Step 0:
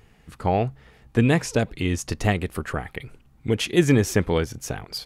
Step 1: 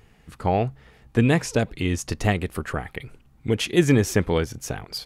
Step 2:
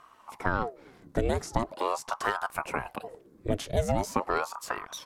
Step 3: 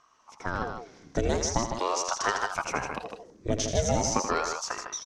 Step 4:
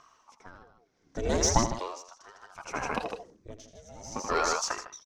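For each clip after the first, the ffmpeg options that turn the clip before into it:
-af anull
-filter_complex "[0:a]equalizer=f=2.6k:t=o:w=0.56:g=-10,acrossover=split=200|1400|3000[a][b][c][d];[a]acompressor=threshold=-33dB:ratio=4[e];[b]acompressor=threshold=-24dB:ratio=4[f];[c]acompressor=threshold=-49dB:ratio=4[g];[d]acompressor=threshold=-40dB:ratio=4[h];[e][f][g][h]amix=inputs=4:normalize=0,aeval=exprs='val(0)*sin(2*PI*670*n/s+670*0.7/0.42*sin(2*PI*0.42*n/s))':c=same,volume=1.5dB"
-af "dynaudnorm=f=120:g=9:m=10dB,lowpass=f=6k:t=q:w=6.2,aecho=1:1:81.63|154.5:0.355|0.447,volume=-8.5dB"
-filter_complex "[0:a]aphaser=in_gain=1:out_gain=1:delay=4.8:decay=0.29:speed=1.2:type=triangular,asplit=2[a][b];[b]asoftclip=type=hard:threshold=-21.5dB,volume=-7dB[c];[a][c]amix=inputs=2:normalize=0,aeval=exprs='val(0)*pow(10,-29*(0.5-0.5*cos(2*PI*0.66*n/s))/20)':c=same,volume=1dB"

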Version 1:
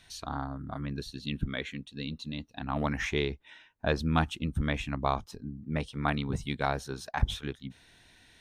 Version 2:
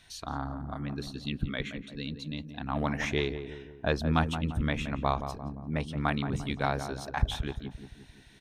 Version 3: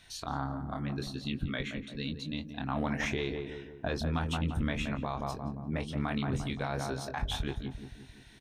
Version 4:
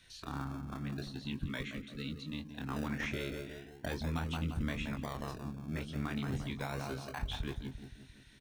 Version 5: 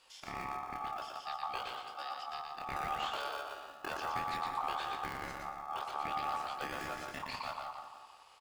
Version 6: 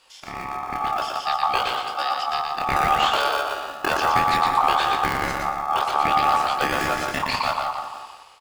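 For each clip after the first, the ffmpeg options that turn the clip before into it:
-filter_complex "[0:a]asplit=2[a][b];[b]adelay=173,lowpass=f=1.2k:p=1,volume=-8dB,asplit=2[c][d];[d]adelay=173,lowpass=f=1.2k:p=1,volume=0.54,asplit=2[e][f];[f]adelay=173,lowpass=f=1.2k:p=1,volume=0.54,asplit=2[g][h];[h]adelay=173,lowpass=f=1.2k:p=1,volume=0.54,asplit=2[i][j];[j]adelay=173,lowpass=f=1.2k:p=1,volume=0.54,asplit=2[k][l];[l]adelay=173,lowpass=f=1.2k:p=1,volume=0.54[m];[a][c][e][g][i][k][m]amix=inputs=7:normalize=0"
-filter_complex "[0:a]alimiter=limit=-22.5dB:level=0:latency=1:release=84,asplit=2[a][b];[b]adelay=23,volume=-7dB[c];[a][c]amix=inputs=2:normalize=0"
-filter_complex "[0:a]acrossover=split=4300[a][b];[b]acompressor=threshold=-52dB:ratio=4:attack=1:release=60[c];[a][c]amix=inputs=2:normalize=0,acrossover=split=380|820[d][e][f];[e]acrusher=samples=35:mix=1:aa=0.000001:lfo=1:lforange=21:lforate=0.39[g];[d][g][f]amix=inputs=3:normalize=0,volume=-4dB"
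-af "highpass=78,aeval=exprs='val(0)*sin(2*PI*1000*n/s)':c=same,aecho=1:1:118|236|354|472:0.631|0.17|0.046|0.0124,volume=1dB"
-af "dynaudnorm=f=500:g=3:m=10dB,volume=7.5dB"

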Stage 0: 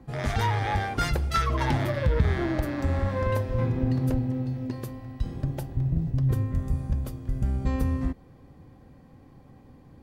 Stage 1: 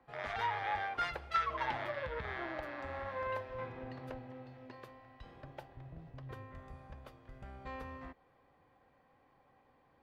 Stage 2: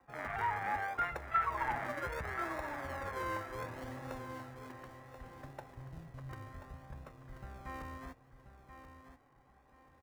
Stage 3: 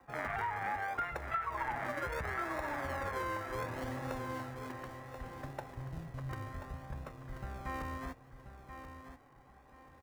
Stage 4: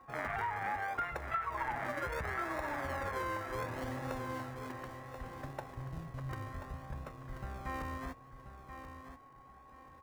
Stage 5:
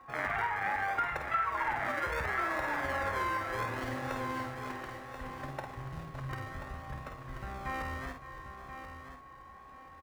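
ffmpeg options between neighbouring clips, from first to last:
-filter_complex "[0:a]acrossover=split=530 3700:gain=0.1 1 0.0891[a][b][c];[a][b][c]amix=inputs=3:normalize=0,volume=-5.5dB"
-filter_complex "[0:a]lowpass=f=2.2k:w=0.5412,lowpass=f=2.2k:w=1.3066,acrossover=split=220|510|1400[a][b][c][d];[b]acrusher=samples=40:mix=1:aa=0.000001:lfo=1:lforange=24:lforate=0.67[e];[a][e][c][d]amix=inputs=4:normalize=0,aecho=1:1:1033|2066|3099:0.316|0.0854|0.0231,volume=1.5dB"
-af "acompressor=threshold=-39dB:ratio=6,volume=5.5dB"
-af "aeval=exprs='val(0)+0.00141*sin(2*PI*1100*n/s)':c=same"
-filter_complex "[0:a]equalizer=f=2.3k:w=0.49:g=5.5,asplit=2[a][b];[b]aecho=0:1:51|564|604:0.501|0.224|0.112[c];[a][c]amix=inputs=2:normalize=0"

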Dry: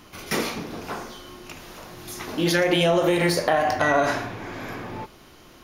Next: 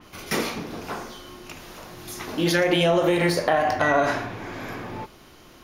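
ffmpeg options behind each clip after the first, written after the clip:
-af "adynamicequalizer=threshold=0.0112:dfrequency=4100:dqfactor=0.7:tfrequency=4100:tqfactor=0.7:attack=5:release=100:ratio=0.375:range=2:mode=cutabove:tftype=highshelf"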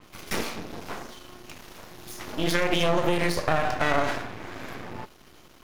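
-af "aeval=exprs='max(val(0),0)':c=same"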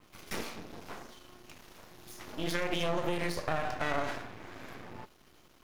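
-af "acrusher=bits=8:dc=4:mix=0:aa=0.000001,volume=-8.5dB"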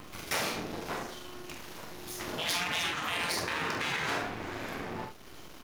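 -af "acompressor=mode=upward:threshold=-50dB:ratio=2.5,aecho=1:1:45|70:0.473|0.266,afftfilt=real='re*lt(hypot(re,im),0.0501)':imag='im*lt(hypot(re,im),0.0501)':win_size=1024:overlap=0.75,volume=8dB"

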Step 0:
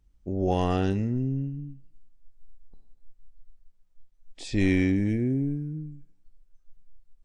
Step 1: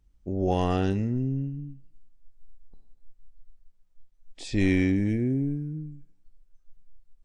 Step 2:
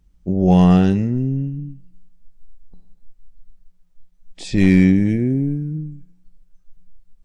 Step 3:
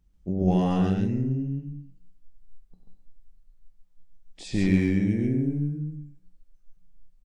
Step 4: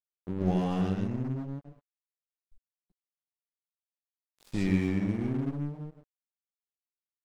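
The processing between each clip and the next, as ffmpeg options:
-af anull
-af "asoftclip=type=hard:threshold=-15dB,equalizer=f=180:w=7.8:g=14.5,volume=6.5dB"
-af "alimiter=limit=-7dB:level=0:latency=1:release=396,aecho=1:1:96.21|137:0.316|0.708,volume=-8dB"
-af "aeval=exprs='sgn(val(0))*max(abs(val(0))-0.0158,0)':c=same,volume=-4dB"

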